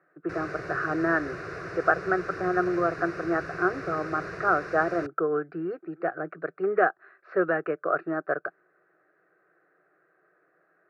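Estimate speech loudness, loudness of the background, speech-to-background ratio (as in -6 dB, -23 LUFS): -28.0 LUFS, -37.5 LUFS, 9.5 dB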